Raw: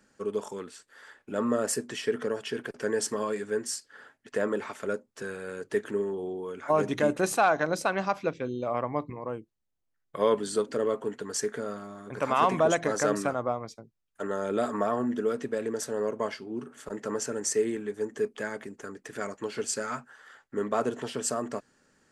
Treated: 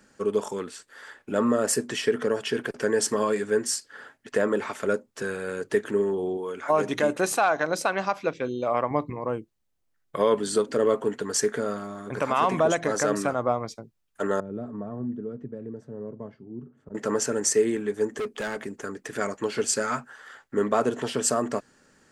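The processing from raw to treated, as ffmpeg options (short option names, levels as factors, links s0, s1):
-filter_complex "[0:a]asettb=1/sr,asplit=3[s0][s1][s2];[s0]atrim=end=6.374[s3];[s1]atrim=start=6.37:end=8.91,asetpts=PTS-STARTPTS,afade=t=in:d=0.004:c=qsin,afade=t=out:st=2.536:d=0.004:c=qsin,lowshelf=f=250:g=-8[s4];[s2]atrim=start=8.906[s5];[s3][s4]acrossfade=d=0.004:c1=hsin:c2=qsin[s6];[s6][s5]acrossfade=d=0.004:c1=qsin:c2=hsin,asettb=1/sr,asplit=3[s7][s8][s9];[s7]atrim=end=14.404[s10];[s8]atrim=start=14.4:end=16.95,asetpts=PTS-STARTPTS,afade=t=in:d=0.004:c=qsin,afade=t=out:st=2.546:d=0.004:c=qsin,bandpass=f=120:t=q:w=1.5[s11];[s9]atrim=start=16.946[s12];[s10][s11]acrossfade=d=0.004:c1=hsin:c2=qsin[s13];[s13][s12]acrossfade=d=0.004:c1=qsin:c2=hsin,asettb=1/sr,asplit=3[s14][s15][s16];[s14]atrim=end=18.184[s17];[s15]atrim=start=18.18:end=18.63,asetpts=PTS-STARTPTS,afade=t=in:d=0.004:c=qsin,afade=t=out:st=0.446:d=0.004:c=qsin,asoftclip=type=hard:threshold=0.0237[s18];[s16]atrim=start=18.626[s19];[s17][s18]acrossfade=d=0.004:c1=hsin:c2=qsin[s20];[s20][s19]acrossfade=d=0.004:c1=qsin:c2=hsin,alimiter=limit=0.133:level=0:latency=1:release=334,volume=2"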